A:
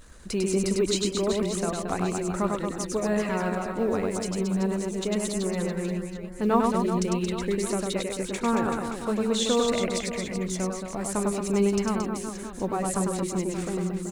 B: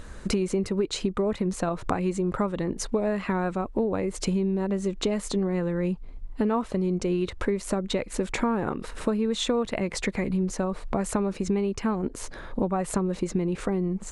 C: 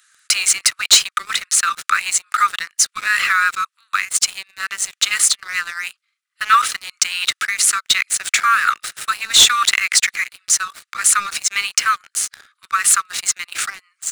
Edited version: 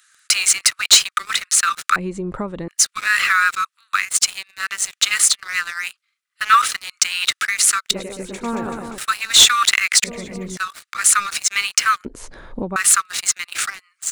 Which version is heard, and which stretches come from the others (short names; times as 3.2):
C
1.96–2.68 from B
7.91–8.98 from A
10.04–10.57 from A
12.05–12.76 from B